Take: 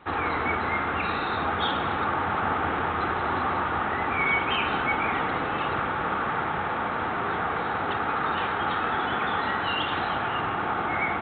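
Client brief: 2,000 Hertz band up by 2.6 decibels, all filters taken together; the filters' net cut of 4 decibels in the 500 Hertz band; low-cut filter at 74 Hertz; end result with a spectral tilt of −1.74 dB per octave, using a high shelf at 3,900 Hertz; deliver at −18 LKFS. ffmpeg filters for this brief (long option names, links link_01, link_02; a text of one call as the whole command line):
ffmpeg -i in.wav -af "highpass=74,equalizer=frequency=500:width_type=o:gain=-5.5,equalizer=frequency=2000:width_type=o:gain=5,highshelf=frequency=3900:gain=-5.5,volume=7.5dB" out.wav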